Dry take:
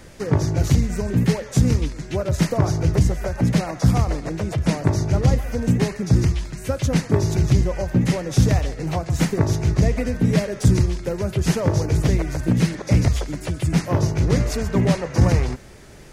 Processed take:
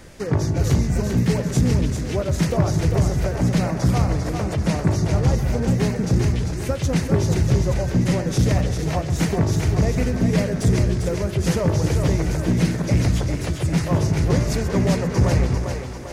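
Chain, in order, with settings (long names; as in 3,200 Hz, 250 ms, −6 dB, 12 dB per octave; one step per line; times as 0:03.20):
soft clipping −9.5 dBFS, distortion −18 dB
on a send: echo with a time of its own for lows and highs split 320 Hz, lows 172 ms, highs 396 ms, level −5.5 dB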